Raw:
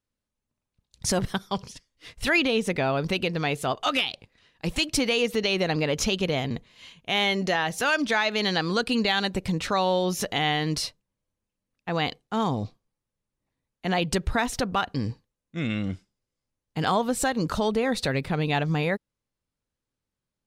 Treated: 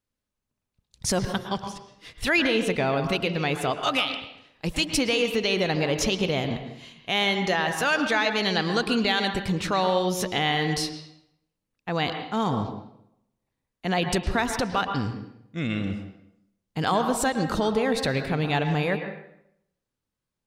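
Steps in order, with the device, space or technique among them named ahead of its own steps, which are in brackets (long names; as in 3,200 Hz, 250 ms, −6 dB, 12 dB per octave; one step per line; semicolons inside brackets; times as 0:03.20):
filtered reverb send (on a send: high-pass filter 210 Hz 6 dB per octave + low-pass filter 3,900 Hz 12 dB per octave + convolution reverb RT60 0.75 s, pre-delay 104 ms, DRR 6.5 dB)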